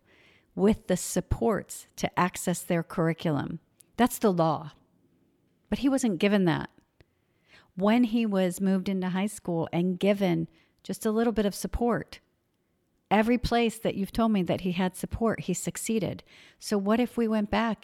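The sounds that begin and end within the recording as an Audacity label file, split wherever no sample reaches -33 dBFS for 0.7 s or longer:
5.720000	6.650000	sound
7.780000	12.150000	sound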